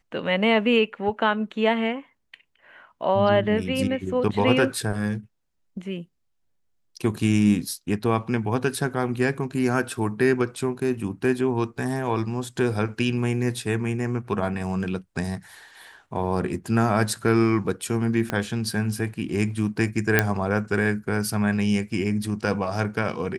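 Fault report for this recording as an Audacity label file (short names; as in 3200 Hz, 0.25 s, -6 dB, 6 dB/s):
18.300000	18.300000	pop -12 dBFS
20.190000	20.190000	pop -3 dBFS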